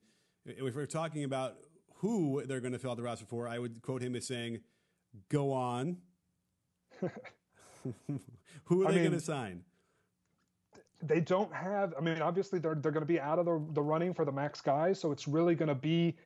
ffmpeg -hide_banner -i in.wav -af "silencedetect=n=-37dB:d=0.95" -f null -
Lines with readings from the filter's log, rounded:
silence_start: 5.94
silence_end: 7.03 | silence_duration: 1.09
silence_start: 9.52
silence_end: 11.03 | silence_duration: 1.51